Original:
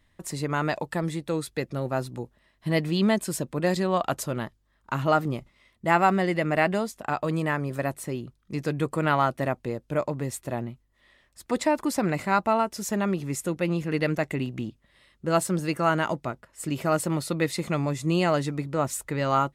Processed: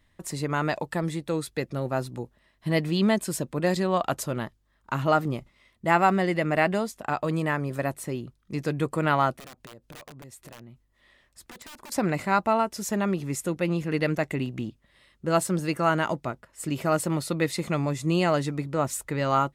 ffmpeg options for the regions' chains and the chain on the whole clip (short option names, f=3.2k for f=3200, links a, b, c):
-filter_complex "[0:a]asettb=1/sr,asplit=3[a][b][c];[a]atrim=end=9.384[d];[b]atrim=start=9.38:end=11.92,asetpts=PTS-STARTPTS,afade=t=in:d=0.004:c=qsin,afade=t=out:st=2.536:d=0.004:c=qsin,aeval=exprs='(mod(12.6*val(0)+1,2)-1)/12.6':c=same,acompressor=threshold=-42dB:ratio=12:attack=3.2:release=140:knee=1:detection=peak[e];[c]atrim=start=11.916[f];[d][e]acrossfade=d=0.004:c1=hsin:c2=qsin[g];[g][f]acrossfade=d=0.004:c1=qsin:c2=hsin"